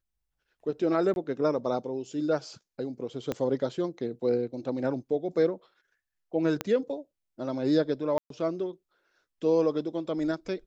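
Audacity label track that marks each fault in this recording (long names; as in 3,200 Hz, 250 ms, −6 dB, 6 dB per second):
1.140000	1.160000	drop-out 21 ms
3.320000	3.320000	click −17 dBFS
6.610000	6.610000	click −14 dBFS
8.180000	8.300000	drop-out 123 ms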